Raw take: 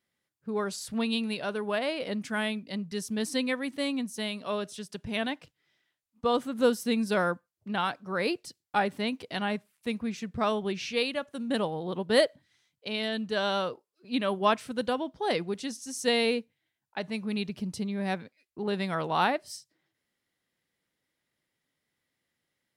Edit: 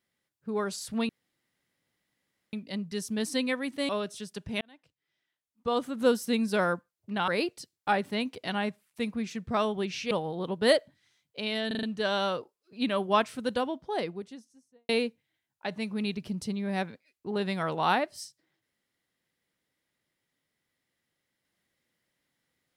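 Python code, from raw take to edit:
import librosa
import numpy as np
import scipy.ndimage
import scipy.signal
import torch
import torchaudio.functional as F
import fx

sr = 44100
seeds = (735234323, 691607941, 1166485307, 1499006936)

y = fx.studio_fade_out(x, sr, start_s=14.84, length_s=1.37)
y = fx.edit(y, sr, fx.room_tone_fill(start_s=1.09, length_s=1.44),
    fx.cut(start_s=3.89, length_s=0.58),
    fx.fade_in_span(start_s=5.19, length_s=1.45),
    fx.cut(start_s=7.86, length_s=0.29),
    fx.cut(start_s=10.98, length_s=0.61),
    fx.stutter(start_s=13.15, slice_s=0.04, count=5), tone=tone)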